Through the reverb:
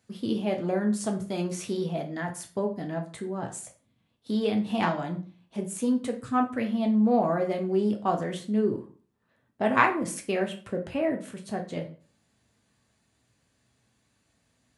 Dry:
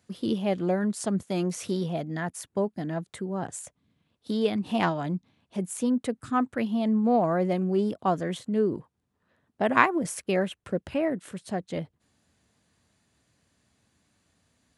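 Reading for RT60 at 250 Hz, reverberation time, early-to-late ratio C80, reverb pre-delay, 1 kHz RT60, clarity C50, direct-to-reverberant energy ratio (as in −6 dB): 0.45 s, 0.40 s, 16.0 dB, 4 ms, 0.40 s, 11.0 dB, 2.0 dB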